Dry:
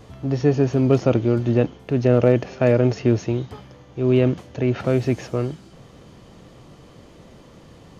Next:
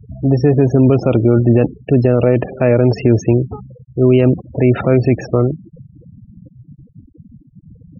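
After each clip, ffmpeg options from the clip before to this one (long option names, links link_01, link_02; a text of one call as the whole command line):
ffmpeg -i in.wav -af "afftfilt=real='re*gte(hypot(re,im),0.0316)':imag='im*gte(hypot(re,im),0.0316)':win_size=1024:overlap=0.75,alimiter=level_in=11.5dB:limit=-1dB:release=50:level=0:latency=1,volume=-1dB" out.wav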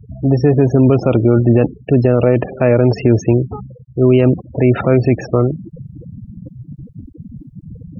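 ffmpeg -i in.wav -af "equalizer=frequency=1100:width=1.5:gain=2.5,areverse,acompressor=mode=upward:threshold=-23dB:ratio=2.5,areverse" out.wav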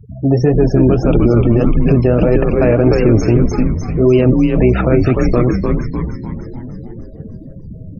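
ffmpeg -i in.wav -filter_complex "[0:a]asplit=2[link_01][link_02];[link_02]asplit=8[link_03][link_04][link_05][link_06][link_07][link_08][link_09][link_10];[link_03]adelay=300,afreqshift=-95,volume=-4dB[link_11];[link_04]adelay=600,afreqshift=-190,volume=-8.9dB[link_12];[link_05]adelay=900,afreqshift=-285,volume=-13.8dB[link_13];[link_06]adelay=1200,afreqshift=-380,volume=-18.6dB[link_14];[link_07]adelay=1500,afreqshift=-475,volume=-23.5dB[link_15];[link_08]adelay=1800,afreqshift=-570,volume=-28.4dB[link_16];[link_09]adelay=2100,afreqshift=-665,volume=-33.3dB[link_17];[link_10]adelay=2400,afreqshift=-760,volume=-38.2dB[link_18];[link_11][link_12][link_13][link_14][link_15][link_16][link_17][link_18]amix=inputs=8:normalize=0[link_19];[link_01][link_19]amix=inputs=2:normalize=0,flanger=delay=2.3:depth=8.3:regen=58:speed=1.7:shape=sinusoidal,alimiter=level_in=6.5dB:limit=-1dB:release=50:level=0:latency=1,volume=-1dB" out.wav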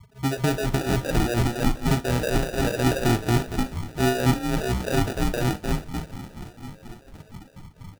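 ffmpeg -i in.wav -filter_complex "[0:a]acrossover=split=460[link_01][link_02];[link_01]aeval=exprs='val(0)*(1-1/2+1/2*cos(2*PI*4.2*n/s))':channel_layout=same[link_03];[link_02]aeval=exprs='val(0)*(1-1/2-1/2*cos(2*PI*4.2*n/s))':channel_layout=same[link_04];[link_03][link_04]amix=inputs=2:normalize=0,acrusher=samples=41:mix=1:aa=0.000001,aecho=1:1:39|59:0.141|0.133,volume=-7.5dB" out.wav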